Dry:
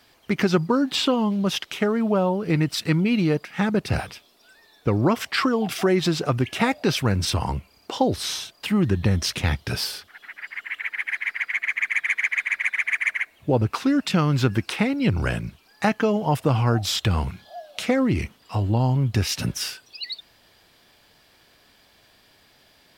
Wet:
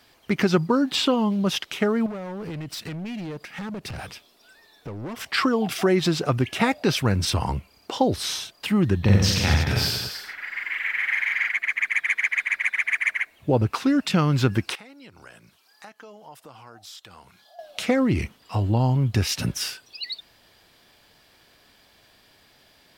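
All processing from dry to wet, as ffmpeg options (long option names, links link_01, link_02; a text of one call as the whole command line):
ffmpeg -i in.wav -filter_complex "[0:a]asettb=1/sr,asplit=3[link_01][link_02][link_03];[link_01]atrim=end=2.064[link_04];[link_02]atrim=start=2.06:end=5.26,asetpts=PTS-STARTPTS,afade=type=in:duration=0.004:curve=qsin,afade=type=out:start_time=3.196:duration=0.004:curve=qsin,acompressor=threshold=-27dB:ratio=6:attack=3.2:release=140:knee=1:detection=peak,volume=30dB,asoftclip=hard,volume=-30dB[link_05];[link_03]atrim=start=5.256[link_06];[link_04][link_05]acrossfade=duration=0.004:curve1=hsin:curve2=qsin[link_07];[link_07][link_06]acrossfade=duration=0.004:curve1=qsin:curve2=hsin,asettb=1/sr,asplit=3[link_08][link_09][link_10];[link_08]atrim=end=9.014[link_11];[link_09]atrim=start=9.01:end=11.49,asetpts=PTS-STARTPTS,afade=type=in:duration=0.004:curve=qsin,afade=type=out:start_time=2.476:duration=0.004:curve=qsin,equalizer=frequency=9700:width=7.2:gain=-14,aecho=1:1:40|90|152.5|230.6|328.3:0.794|0.631|0.501|0.398|0.316,atrim=end_sample=109368[link_12];[link_10]atrim=start=11.486[link_13];[link_11][link_12]acrossfade=duration=0.004:curve1=hsin:curve2=qsin[link_14];[link_14][link_13]acrossfade=duration=0.004:curve1=qsin:curve2=hsin,asettb=1/sr,asplit=3[link_15][link_16][link_17];[link_15]atrim=end=14.754[link_18];[link_16]atrim=start=14.75:end=17.59,asetpts=PTS-STARTPTS,afade=type=in:duration=0.004:curve=qsin,afade=type=out:start_time=2.836:duration=0.004:curve=qsin,highpass=frequency=1200:poles=1,equalizer=frequency=2400:width=1.5:gain=-5.5,acompressor=threshold=-53dB:ratio=2:attack=3.2:release=140:knee=1:detection=peak[link_19];[link_17]atrim=start=17.586[link_20];[link_18][link_19]acrossfade=duration=0.004:curve1=hsin:curve2=qsin[link_21];[link_21][link_20]acrossfade=duration=0.004:curve1=qsin:curve2=hsin" out.wav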